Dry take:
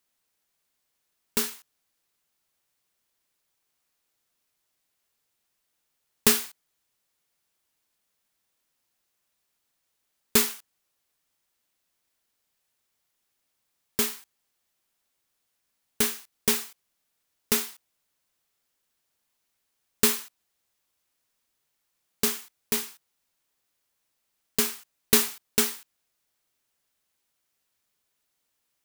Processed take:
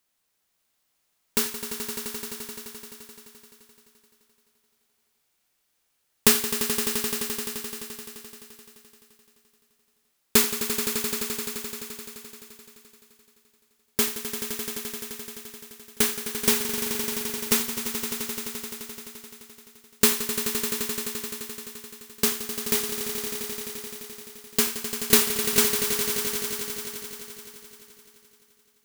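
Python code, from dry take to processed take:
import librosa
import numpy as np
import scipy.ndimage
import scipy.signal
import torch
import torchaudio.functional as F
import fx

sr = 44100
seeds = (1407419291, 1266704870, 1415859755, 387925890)

y = fx.echo_swell(x, sr, ms=86, loudest=5, wet_db=-10.5)
y = y * 10.0 ** (2.0 / 20.0)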